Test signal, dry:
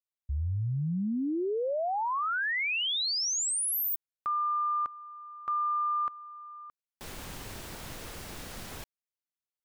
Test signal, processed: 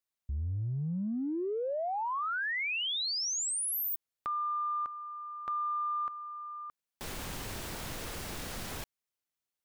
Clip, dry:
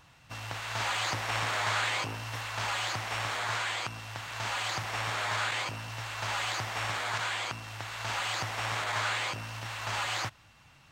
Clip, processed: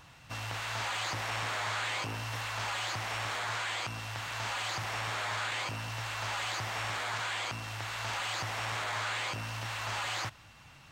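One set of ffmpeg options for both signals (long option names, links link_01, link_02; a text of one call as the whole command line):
ffmpeg -i in.wav -af "acompressor=threshold=-38dB:ratio=3:attack=1.9:release=25:knee=6:detection=peak,volume=3.5dB" out.wav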